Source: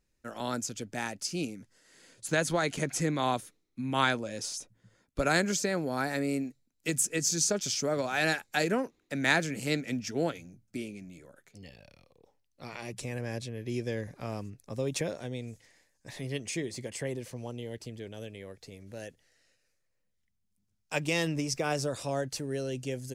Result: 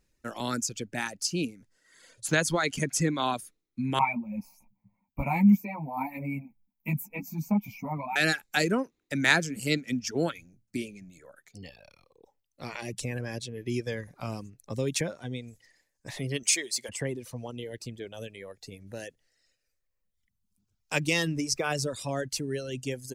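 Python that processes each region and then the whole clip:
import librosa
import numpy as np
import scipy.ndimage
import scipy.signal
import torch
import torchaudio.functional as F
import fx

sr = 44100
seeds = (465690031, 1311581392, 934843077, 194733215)

y = fx.chain(x, sr, fx.curve_eq(hz=(120.0, 210.0, 410.0, 930.0, 1600.0, 2300.0, 3300.0, 9200.0, 14000.0), db=(0, 11, -18, 13, -30, 5, -27, -26, 10)),
    fx.ensemble(), at=(3.99, 8.16))
y = fx.chain(y, sr, fx.highpass(hz=760.0, slope=6),
    fx.high_shelf(hz=2500.0, db=11.0), at=(16.43, 16.89))
y = fx.dereverb_blind(y, sr, rt60_s=1.5)
y = fx.dynamic_eq(y, sr, hz=660.0, q=1.1, threshold_db=-44.0, ratio=4.0, max_db=-5)
y = y * librosa.db_to_amplitude(5.0)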